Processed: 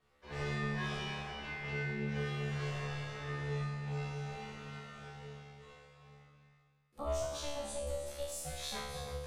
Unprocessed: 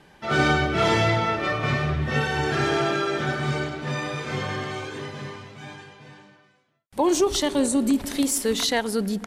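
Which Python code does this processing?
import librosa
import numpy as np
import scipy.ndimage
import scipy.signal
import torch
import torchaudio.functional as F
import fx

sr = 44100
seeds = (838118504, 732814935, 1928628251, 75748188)

y = x * np.sin(2.0 * np.pi * 290.0 * np.arange(len(x)) / sr)
y = fx.comb_fb(y, sr, f0_hz=72.0, decay_s=0.92, harmonics='all', damping=0.0, mix_pct=100)
y = fx.echo_feedback(y, sr, ms=320, feedback_pct=33, wet_db=-10.0)
y = F.gain(torch.from_numpy(y), -1.5).numpy()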